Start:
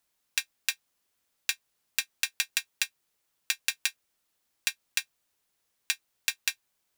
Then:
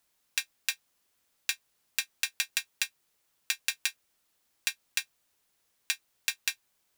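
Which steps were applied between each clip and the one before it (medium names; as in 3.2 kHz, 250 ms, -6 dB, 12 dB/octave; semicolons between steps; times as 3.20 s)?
loudness maximiser +7.5 dB; trim -4.5 dB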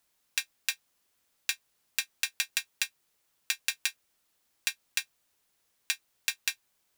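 no audible change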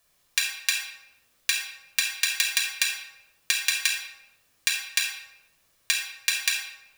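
simulated room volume 3900 m³, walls furnished, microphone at 5.8 m; trim +4 dB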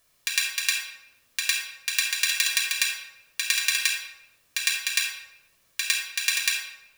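band-stop 790 Hz, Q 12; reverse echo 106 ms -4.5 dB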